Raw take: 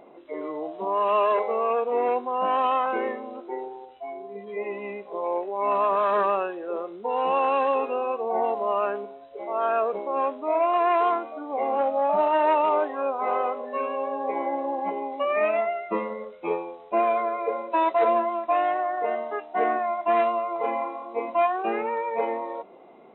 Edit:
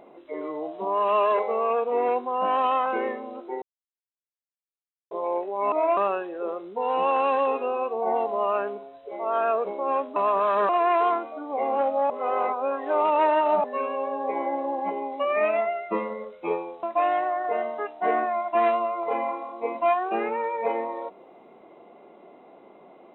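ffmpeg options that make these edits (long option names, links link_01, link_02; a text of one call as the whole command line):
ffmpeg -i in.wav -filter_complex "[0:a]asplit=10[link_01][link_02][link_03][link_04][link_05][link_06][link_07][link_08][link_09][link_10];[link_01]atrim=end=3.62,asetpts=PTS-STARTPTS,afade=type=out:start_time=3.616:duration=0.004:curve=hsin[link_11];[link_02]atrim=start=3.62:end=5.11,asetpts=PTS-STARTPTS,volume=0[link_12];[link_03]atrim=start=5.11:end=5.722,asetpts=PTS-STARTPTS,afade=type=in:duration=0.004:curve=hsin[link_13];[link_04]atrim=start=10.438:end=10.692[link_14];[link_05]atrim=start=6.248:end=10.442[link_15];[link_06]atrim=start=5.718:end=6.252[link_16];[link_07]atrim=start=10.688:end=12.102[link_17];[link_08]atrim=start=12.098:end=13.642,asetpts=PTS-STARTPTS,areverse[link_18];[link_09]atrim=start=13.638:end=16.832[link_19];[link_10]atrim=start=18.358[link_20];[link_11][link_12][link_13]concat=n=3:v=0:a=1[link_21];[link_21][link_14]acrossfade=duration=0.004:curve1=hsin:curve2=hsin[link_22];[link_22][link_15]acrossfade=duration=0.004:curve1=hsin:curve2=hsin[link_23];[link_23][link_16]acrossfade=duration=0.004:curve1=hsin:curve2=hsin[link_24];[link_24][link_17]acrossfade=duration=0.004:curve1=hsin:curve2=hsin[link_25];[link_25][link_18]acrossfade=duration=0.004:curve1=hsin:curve2=hsin[link_26];[link_26][link_19]acrossfade=duration=0.004:curve1=hsin:curve2=hsin[link_27];[link_27][link_20]acrossfade=duration=0.004:curve1=hsin:curve2=hsin" out.wav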